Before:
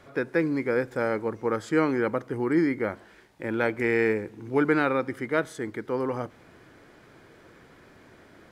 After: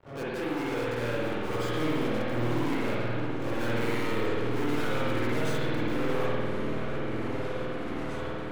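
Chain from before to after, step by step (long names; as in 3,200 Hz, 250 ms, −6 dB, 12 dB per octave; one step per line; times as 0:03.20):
first-order pre-emphasis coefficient 0.8
low-pass that shuts in the quiet parts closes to 690 Hz, open at −31.5 dBFS
low-shelf EQ 110 Hz +3.5 dB
in parallel at +1 dB: downward compressor, threshold −55 dBFS, peak gain reduction 23 dB
on the sum: leveller curve on the samples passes 5
automatic gain control gain up to 10.5 dB
soft clipping −35.5 dBFS, distortion −6 dB
on a send: echo whose low-pass opens from repeat to repeat 660 ms, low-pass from 200 Hz, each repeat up 2 octaves, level −3 dB
on the sum: spring reverb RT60 1.8 s, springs 51 ms, chirp 65 ms, DRR −8.5 dB
level −3 dB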